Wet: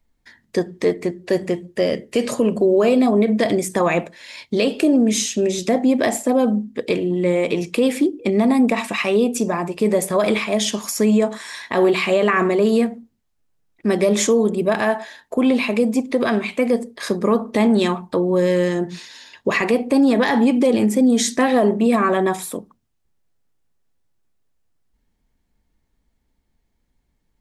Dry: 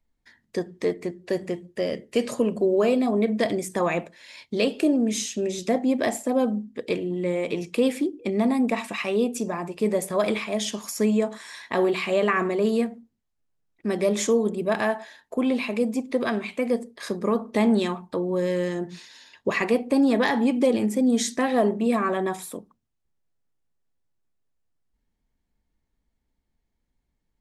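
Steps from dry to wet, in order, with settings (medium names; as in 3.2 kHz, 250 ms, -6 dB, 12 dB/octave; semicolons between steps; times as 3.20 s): peak limiter -15.5 dBFS, peak gain reduction 6.5 dB; trim +7.5 dB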